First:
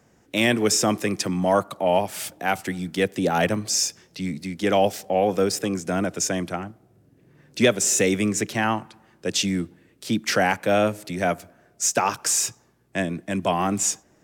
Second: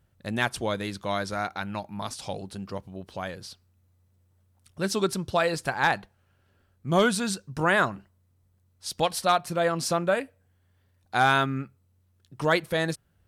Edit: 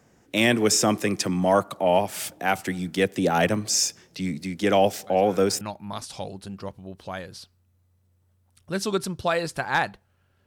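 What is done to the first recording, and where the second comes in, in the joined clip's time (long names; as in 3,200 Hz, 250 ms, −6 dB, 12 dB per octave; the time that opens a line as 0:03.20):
first
0:05.07: mix in second from 0:01.16 0.54 s −16.5 dB
0:05.61: continue with second from 0:01.70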